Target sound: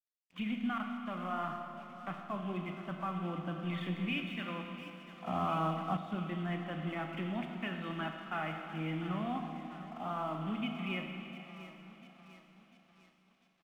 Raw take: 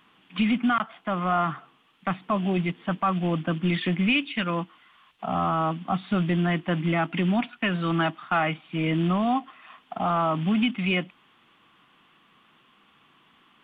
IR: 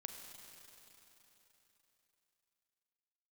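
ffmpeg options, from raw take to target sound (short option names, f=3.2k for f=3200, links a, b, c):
-filter_complex "[0:a]aecho=1:1:698|1396|2094|2792|3490|4188:0.2|0.114|0.0648|0.037|0.0211|0.012,aeval=exprs='sgn(val(0))*max(abs(val(0))-0.00355,0)':c=same[a];[1:a]atrim=start_sample=2205,asetrate=57330,aresample=44100[b];[a][b]afir=irnorm=-1:irlink=0,asettb=1/sr,asplit=3[c][d][e];[c]atrim=end=5.264[f];[d]atrim=start=5.26:end=5.97,asetpts=PTS-STARTPTS,afade=t=in:d=0.004:c=qsin,afade=t=out:st=0.706:d=0.004:c=qsin,acontrast=32[g];[e]atrim=start=5.966[h];[f][g]acrossfade=d=0.004:c1=hsin:c2=qsin[i];[i][h]acrossfade=d=0.004:c1=qsin:c2=hsin,volume=-6.5dB"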